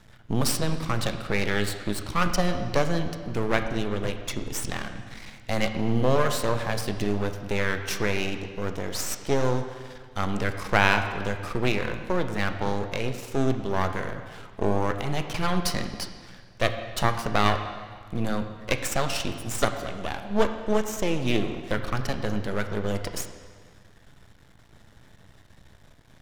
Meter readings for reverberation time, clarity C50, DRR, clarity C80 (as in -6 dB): 1.7 s, 8.5 dB, 6.5 dB, 9.5 dB